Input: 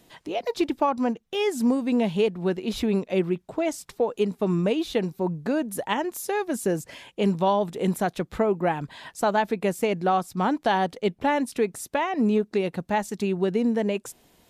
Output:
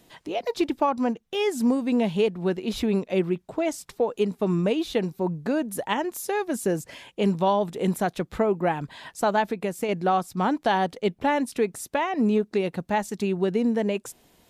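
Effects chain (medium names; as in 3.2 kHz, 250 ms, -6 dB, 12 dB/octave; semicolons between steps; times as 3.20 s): 9.46–9.89 s: compression 2.5:1, threshold -25 dBFS, peak gain reduction 4.5 dB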